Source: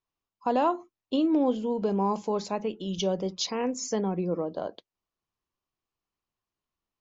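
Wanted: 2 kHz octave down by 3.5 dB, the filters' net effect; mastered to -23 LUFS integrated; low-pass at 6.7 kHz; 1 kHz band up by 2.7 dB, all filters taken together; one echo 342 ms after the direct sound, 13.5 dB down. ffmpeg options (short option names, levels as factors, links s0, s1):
-af "lowpass=6700,equalizer=f=1000:t=o:g=4.5,equalizer=f=2000:t=o:g=-6.5,aecho=1:1:342:0.211,volume=1.78"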